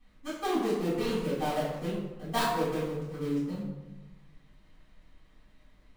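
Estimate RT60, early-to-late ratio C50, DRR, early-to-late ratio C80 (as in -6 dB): 1.1 s, 0.5 dB, -14.0 dB, 3.5 dB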